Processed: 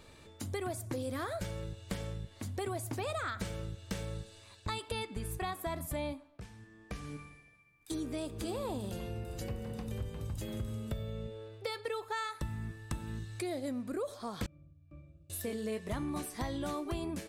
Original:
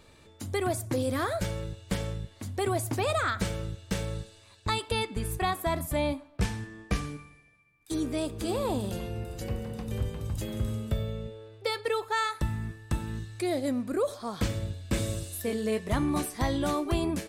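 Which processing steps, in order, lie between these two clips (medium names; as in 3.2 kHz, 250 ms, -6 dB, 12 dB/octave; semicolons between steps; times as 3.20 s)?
compression 2.5:1, threshold -38 dBFS, peak gain reduction 10.5 dB; 6.08–7.13 s: dip -11 dB, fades 0.33 s; 14.46–15.30 s: pitch-class resonator D, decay 0.47 s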